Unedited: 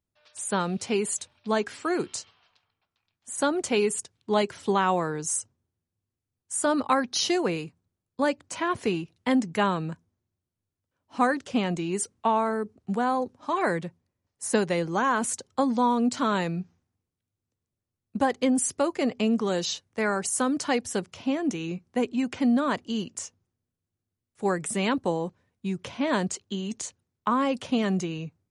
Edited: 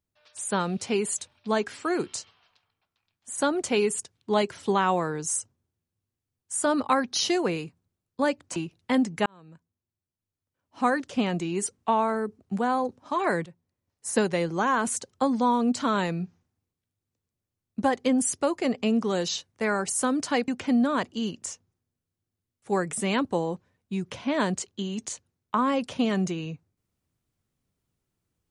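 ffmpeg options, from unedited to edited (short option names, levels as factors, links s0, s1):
-filter_complex "[0:a]asplit=5[s0][s1][s2][s3][s4];[s0]atrim=end=8.562[s5];[s1]atrim=start=8.928:end=9.63,asetpts=PTS-STARTPTS,afade=t=out:st=0.698:d=0.004:c=hsin[s6];[s2]atrim=start=9.63:end=13.83,asetpts=PTS-STARTPTS,afade=t=in:d=1.76,afade=t=out:st=4.196:d=0.004:c=hsin:silence=0.199526[s7];[s3]atrim=start=13.83:end=20.852,asetpts=PTS-STARTPTS,afade=t=in:d=0.63:c=qsin:silence=0.199526[s8];[s4]atrim=start=22.208[s9];[s6][s7][s8]concat=n=3:v=0:a=1[s10];[s5][s10]acrossfade=d=0.004:c1=hsin:c2=hsin[s11];[s11][s9]acrossfade=d=0.004:c1=hsin:c2=hsin"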